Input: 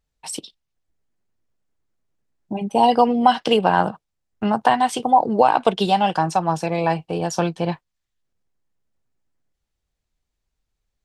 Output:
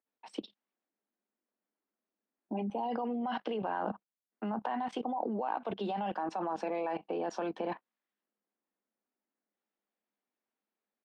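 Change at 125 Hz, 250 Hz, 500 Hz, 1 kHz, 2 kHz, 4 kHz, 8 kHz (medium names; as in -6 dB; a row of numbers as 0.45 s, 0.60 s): -19.5 dB, -13.5 dB, -15.0 dB, -18.0 dB, -17.5 dB, -21.5 dB, under -25 dB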